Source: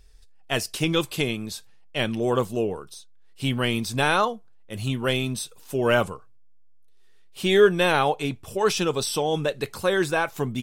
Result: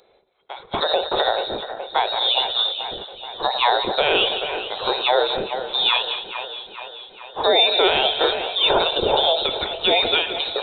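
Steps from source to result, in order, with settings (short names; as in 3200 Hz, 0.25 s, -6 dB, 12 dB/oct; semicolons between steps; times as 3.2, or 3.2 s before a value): regenerating reverse delay 0.11 s, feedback 56%, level -14 dB; Bessel high-pass 230 Hz, order 2; high shelf 2500 Hz +5.5 dB; echo with dull and thin repeats by turns 0.214 s, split 920 Hz, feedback 77%, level -12 dB; inverted band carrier 4000 Hz; band shelf 580 Hz +13 dB; maximiser +9.5 dB; ending taper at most 110 dB/s; gain -6 dB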